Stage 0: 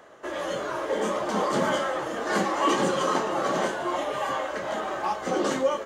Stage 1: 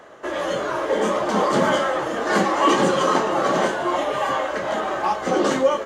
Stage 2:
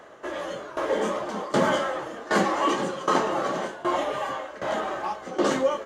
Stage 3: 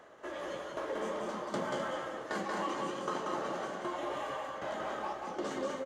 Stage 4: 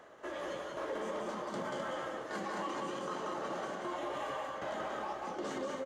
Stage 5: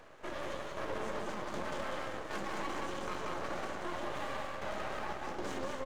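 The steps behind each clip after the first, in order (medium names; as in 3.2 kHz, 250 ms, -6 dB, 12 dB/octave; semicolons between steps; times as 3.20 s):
treble shelf 7.1 kHz -5 dB; trim +6 dB
tremolo saw down 1.3 Hz, depth 85%; trim -2 dB
compression 3:1, threshold -27 dBFS, peak gain reduction 8 dB; on a send: loudspeakers at several distances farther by 63 m -3 dB, 88 m -11 dB; on the sum: trim -8.5 dB
peak limiter -29.5 dBFS, peak gain reduction 7 dB
half-wave rectifier; trim +4 dB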